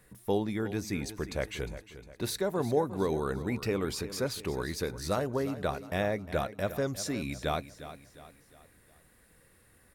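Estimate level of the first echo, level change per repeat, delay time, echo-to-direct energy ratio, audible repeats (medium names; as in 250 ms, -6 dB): -13.5 dB, -7.5 dB, 356 ms, -12.5 dB, 3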